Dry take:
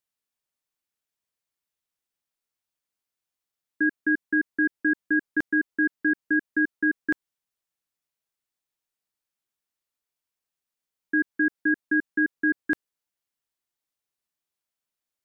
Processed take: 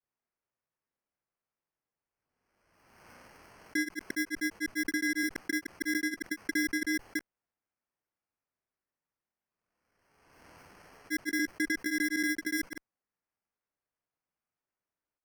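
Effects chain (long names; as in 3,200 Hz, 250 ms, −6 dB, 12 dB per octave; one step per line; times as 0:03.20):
decimation without filtering 12×
granular cloud 116 ms, grains 20 per second, spray 100 ms, pitch spread up and down by 0 semitones
harmonic generator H 5 −42 dB, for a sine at −14.5 dBFS
background raised ahead of every attack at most 40 dB per second
level −6.5 dB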